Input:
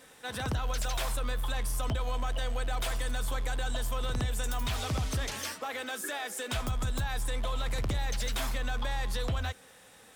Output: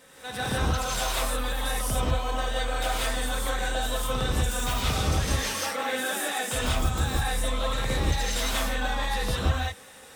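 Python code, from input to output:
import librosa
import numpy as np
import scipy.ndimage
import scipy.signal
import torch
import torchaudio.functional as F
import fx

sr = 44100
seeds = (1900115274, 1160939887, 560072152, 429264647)

y = fx.rev_gated(x, sr, seeds[0], gate_ms=220, shape='rising', drr_db=-6.5)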